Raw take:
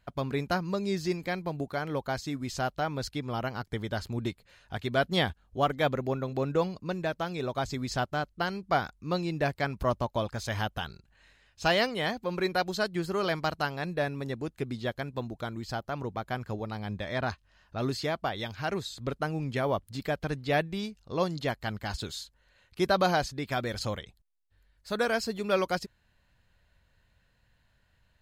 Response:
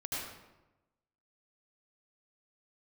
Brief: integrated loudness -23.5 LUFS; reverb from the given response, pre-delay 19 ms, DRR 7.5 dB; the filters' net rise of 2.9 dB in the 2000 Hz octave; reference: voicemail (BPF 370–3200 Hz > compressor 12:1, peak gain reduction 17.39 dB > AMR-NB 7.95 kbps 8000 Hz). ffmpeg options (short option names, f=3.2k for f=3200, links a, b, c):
-filter_complex "[0:a]equalizer=f=2k:t=o:g=4.5,asplit=2[a][b];[1:a]atrim=start_sample=2205,adelay=19[c];[b][c]afir=irnorm=-1:irlink=0,volume=-10.5dB[d];[a][d]amix=inputs=2:normalize=0,highpass=370,lowpass=3.2k,acompressor=threshold=-36dB:ratio=12,volume=19dB" -ar 8000 -c:a libopencore_amrnb -b:a 7950